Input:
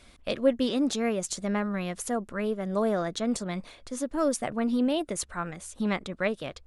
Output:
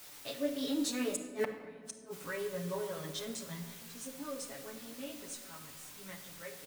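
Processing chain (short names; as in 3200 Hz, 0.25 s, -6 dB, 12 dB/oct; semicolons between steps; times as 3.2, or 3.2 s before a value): Doppler pass-by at 1.61, 24 m/s, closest 1.6 m; HPF 150 Hz 12 dB/oct; high shelf 3100 Hz +9 dB; notch 720 Hz, Q 12; comb 7.3 ms, depth 88%; in parallel at -2.5 dB: compressor, threshold -56 dBFS, peak gain reduction 24.5 dB; on the sum: requantised 10-bit, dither triangular; chorus voices 2, 0.78 Hz, delay 19 ms, depth 3 ms; flipped gate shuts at -33 dBFS, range -36 dB; on a send at -5 dB: reverb RT60 1.7 s, pre-delay 7 ms; on the sum: gain +11 dB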